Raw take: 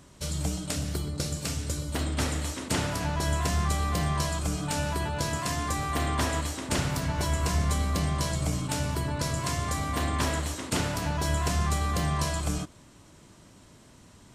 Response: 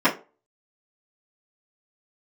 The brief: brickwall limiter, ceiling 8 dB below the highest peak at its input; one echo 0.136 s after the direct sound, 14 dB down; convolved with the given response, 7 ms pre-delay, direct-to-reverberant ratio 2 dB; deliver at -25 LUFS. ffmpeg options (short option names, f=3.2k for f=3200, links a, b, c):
-filter_complex "[0:a]alimiter=limit=-21dB:level=0:latency=1,aecho=1:1:136:0.2,asplit=2[a][b];[1:a]atrim=start_sample=2205,adelay=7[c];[b][c]afir=irnorm=-1:irlink=0,volume=-21.5dB[d];[a][d]amix=inputs=2:normalize=0,volume=3.5dB"